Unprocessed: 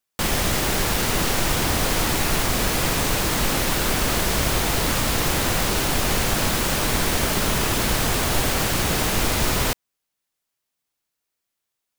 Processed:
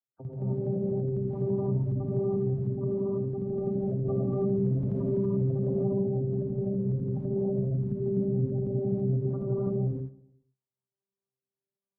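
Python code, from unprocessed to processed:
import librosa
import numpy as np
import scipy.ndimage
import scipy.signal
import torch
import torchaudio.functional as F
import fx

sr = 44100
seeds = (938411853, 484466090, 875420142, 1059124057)

y = fx.vocoder_arp(x, sr, chord='bare fifth', root=48, every_ms=368)
y = fx.lowpass(y, sr, hz=1800.0, slope=6)
y = fx.spec_gate(y, sr, threshold_db=-10, keep='strong')
y = fx.peak_eq(y, sr, hz=150.0, db=-15.0, octaves=0.31, at=(2.56, 3.31))
y = fx.tremolo_shape(y, sr, shape='saw_down', hz=12.0, depth_pct=75)
y = fx.echo_feedback(y, sr, ms=112, feedback_pct=48, wet_db=-19.0)
y = fx.rev_gated(y, sr, seeds[0], gate_ms=350, shape='rising', drr_db=-7.5)
y = fx.env_flatten(y, sr, amount_pct=50, at=(4.05, 6.01))
y = y * librosa.db_to_amplitude(-7.5)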